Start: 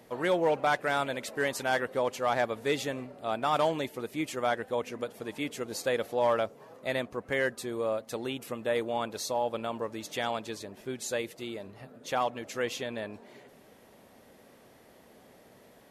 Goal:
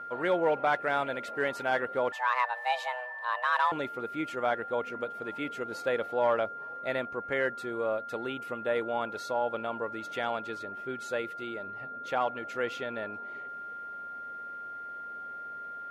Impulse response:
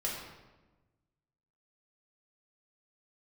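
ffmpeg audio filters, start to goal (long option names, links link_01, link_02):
-filter_complex "[0:a]aeval=exprs='val(0)+0.0126*sin(2*PI*1400*n/s)':channel_layout=same,bass=frequency=250:gain=-5,treble=frequency=4000:gain=-14,asettb=1/sr,asplit=3[link_01][link_02][link_03];[link_01]atrim=end=2.124[link_04];[link_02]atrim=start=2.12:end=3.72,asetpts=PTS-STARTPTS,afade=type=in:duration=0.004:curve=qsin,afade=type=out:start_time=1.596:duration=0.004:curve=qsin,afreqshift=370[link_05];[link_03]atrim=start=3.716[link_06];[link_04][link_05]acrossfade=duration=0.004:curve1=hsin:curve2=qsin[link_07];[link_07][link_06]acrossfade=duration=0.004:curve1=qsin:curve2=hsin"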